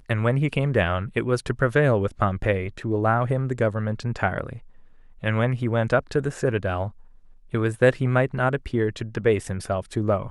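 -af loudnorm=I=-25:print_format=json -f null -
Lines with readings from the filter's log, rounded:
"input_i" : "-24.0",
"input_tp" : "-4.9",
"input_lra" : "2.1",
"input_thresh" : "-34.3",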